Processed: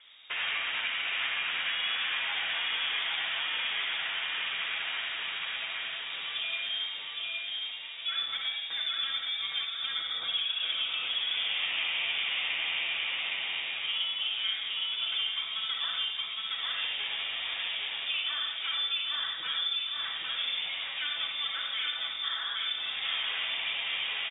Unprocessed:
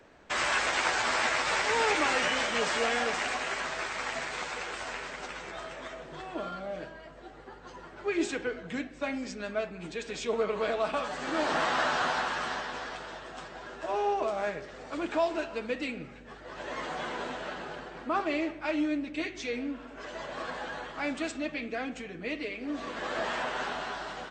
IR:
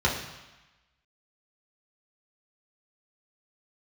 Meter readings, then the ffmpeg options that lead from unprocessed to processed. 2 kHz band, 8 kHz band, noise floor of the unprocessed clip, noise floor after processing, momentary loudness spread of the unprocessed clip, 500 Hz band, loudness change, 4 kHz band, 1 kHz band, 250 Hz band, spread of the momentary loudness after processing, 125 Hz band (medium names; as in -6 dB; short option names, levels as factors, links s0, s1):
0.0 dB, under -40 dB, -48 dBFS, -38 dBFS, 14 LU, -21.5 dB, +1.5 dB, +11.0 dB, -10.5 dB, under -25 dB, 4 LU, under -15 dB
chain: -filter_complex "[0:a]aecho=1:1:814|1628|2442|3256|4070:0.708|0.269|0.102|0.0388|0.0148,acompressor=threshold=0.0282:ratio=4,asplit=2[s0][s1];[1:a]atrim=start_sample=2205,afade=t=out:st=0.18:d=0.01,atrim=end_sample=8379,adelay=59[s2];[s1][s2]afir=irnorm=-1:irlink=0,volume=0.178[s3];[s0][s3]amix=inputs=2:normalize=0,acrossover=split=2900[s4][s5];[s5]acompressor=threshold=0.00447:ratio=4:attack=1:release=60[s6];[s4][s6]amix=inputs=2:normalize=0,lowpass=f=3200:t=q:w=0.5098,lowpass=f=3200:t=q:w=0.6013,lowpass=f=3200:t=q:w=0.9,lowpass=f=3200:t=q:w=2.563,afreqshift=-3800"